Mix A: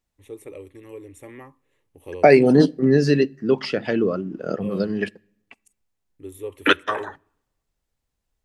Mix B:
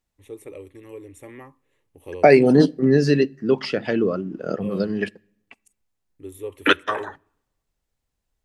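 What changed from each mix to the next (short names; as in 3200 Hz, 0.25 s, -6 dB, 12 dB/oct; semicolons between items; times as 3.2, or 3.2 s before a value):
none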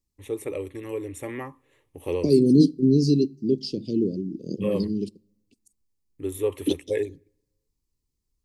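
first voice +7.5 dB; second voice: add elliptic band-stop 350–4400 Hz, stop band 60 dB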